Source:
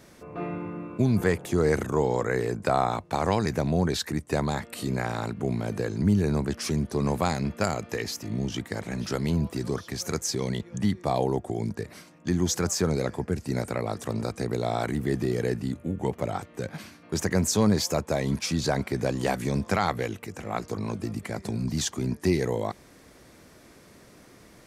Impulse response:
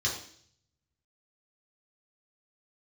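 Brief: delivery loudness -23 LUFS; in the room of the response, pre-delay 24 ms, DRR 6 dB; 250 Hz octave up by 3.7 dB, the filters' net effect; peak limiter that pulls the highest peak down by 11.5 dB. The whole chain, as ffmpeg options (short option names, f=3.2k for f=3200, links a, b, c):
-filter_complex "[0:a]equalizer=f=250:t=o:g=5,alimiter=limit=-19.5dB:level=0:latency=1,asplit=2[a][b];[1:a]atrim=start_sample=2205,adelay=24[c];[b][c]afir=irnorm=-1:irlink=0,volume=-13dB[d];[a][d]amix=inputs=2:normalize=0,volume=6dB"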